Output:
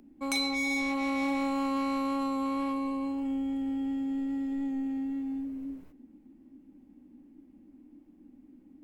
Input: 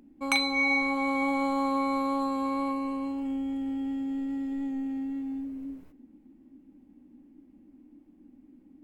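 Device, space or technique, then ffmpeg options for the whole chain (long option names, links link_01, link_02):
one-band saturation: -filter_complex "[0:a]acrossover=split=420|4000[link_01][link_02][link_03];[link_02]asoftclip=type=tanh:threshold=-32dB[link_04];[link_01][link_04][link_03]amix=inputs=3:normalize=0"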